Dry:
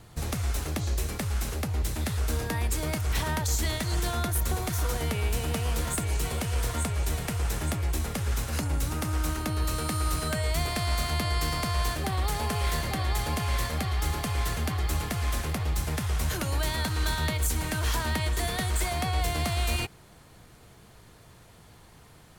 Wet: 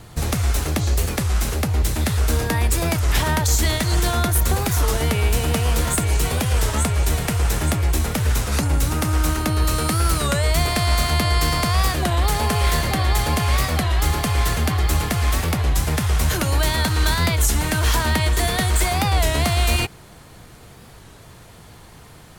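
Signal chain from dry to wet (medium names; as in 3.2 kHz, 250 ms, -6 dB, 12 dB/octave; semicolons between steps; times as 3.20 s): warped record 33 1/3 rpm, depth 160 cents; trim +9 dB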